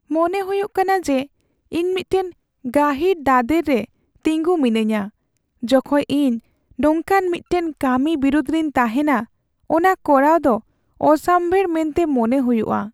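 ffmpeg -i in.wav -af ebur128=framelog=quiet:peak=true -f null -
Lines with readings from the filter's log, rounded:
Integrated loudness:
  I:         -18.8 LUFS
  Threshold: -29.3 LUFS
Loudness range:
  LRA:         2.6 LU
  Threshold: -39.3 LUFS
  LRA low:   -20.5 LUFS
  LRA high:  -17.9 LUFS
True peak:
  Peak:       -2.4 dBFS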